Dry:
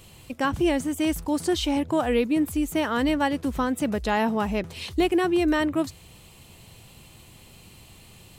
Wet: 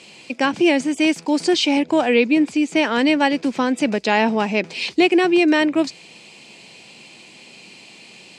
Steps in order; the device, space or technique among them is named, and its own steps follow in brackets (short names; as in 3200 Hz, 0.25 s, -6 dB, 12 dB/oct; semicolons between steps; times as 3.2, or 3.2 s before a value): television speaker (speaker cabinet 200–7800 Hz, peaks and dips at 1200 Hz -6 dB, 2400 Hz +9 dB, 4800 Hz +7 dB); 2.06–2.76 LPF 8300 Hz 12 dB/oct; gain +6.5 dB